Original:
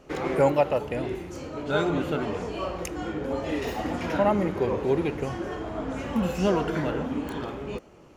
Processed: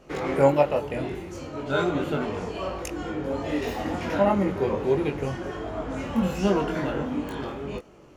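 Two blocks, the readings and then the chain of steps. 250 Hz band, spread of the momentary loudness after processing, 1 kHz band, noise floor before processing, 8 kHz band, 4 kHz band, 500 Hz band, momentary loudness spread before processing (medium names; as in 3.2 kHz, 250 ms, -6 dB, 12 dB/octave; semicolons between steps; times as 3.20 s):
+1.0 dB, 11 LU, +0.5 dB, -51 dBFS, +0.5 dB, +0.5 dB, +1.0 dB, 10 LU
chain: chorus 1.4 Hz, delay 20 ms, depth 2.4 ms; trim +3.5 dB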